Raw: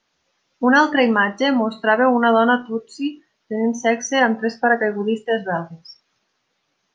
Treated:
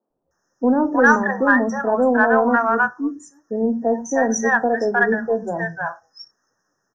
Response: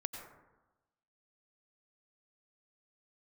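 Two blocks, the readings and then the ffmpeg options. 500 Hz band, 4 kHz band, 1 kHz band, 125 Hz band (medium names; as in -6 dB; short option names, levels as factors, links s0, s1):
0.0 dB, under -15 dB, -0.5 dB, -1.0 dB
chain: -filter_complex "[0:a]acrossover=split=190|750[s0][s1][s2];[s0]adelay=100[s3];[s2]adelay=310[s4];[s3][s1][s4]amix=inputs=3:normalize=0,afftfilt=real='re*(1-between(b*sr/4096,1900,5100))':imag='im*(1-between(b*sr/4096,1900,5100))':win_size=4096:overlap=0.75,aeval=exprs='0.708*(cos(1*acos(clip(val(0)/0.708,-1,1)))-cos(1*PI/2))+0.00501*(cos(6*acos(clip(val(0)/0.708,-1,1)))-cos(6*PI/2))':c=same,volume=1.26"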